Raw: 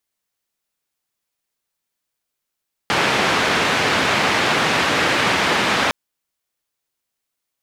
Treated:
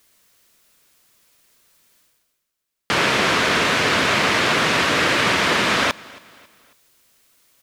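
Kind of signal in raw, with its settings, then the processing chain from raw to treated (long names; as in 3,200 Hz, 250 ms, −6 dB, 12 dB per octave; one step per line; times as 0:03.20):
band-limited noise 120–2,400 Hz, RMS −18 dBFS 3.01 s
parametric band 810 Hz −7.5 dB 0.21 octaves
reversed playback
upward compression, threshold −41 dBFS
reversed playback
repeating echo 273 ms, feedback 43%, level −23 dB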